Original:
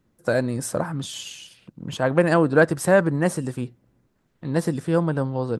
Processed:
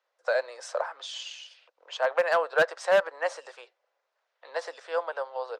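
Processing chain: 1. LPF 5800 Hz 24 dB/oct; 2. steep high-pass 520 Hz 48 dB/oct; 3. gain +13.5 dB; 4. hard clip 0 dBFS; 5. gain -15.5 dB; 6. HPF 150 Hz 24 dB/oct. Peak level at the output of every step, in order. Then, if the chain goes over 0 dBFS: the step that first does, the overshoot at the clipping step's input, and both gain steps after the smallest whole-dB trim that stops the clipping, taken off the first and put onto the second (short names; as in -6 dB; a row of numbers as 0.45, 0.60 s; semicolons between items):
-5.0, -5.5, +8.0, 0.0, -15.5, -11.0 dBFS; step 3, 8.0 dB; step 3 +5.5 dB, step 5 -7.5 dB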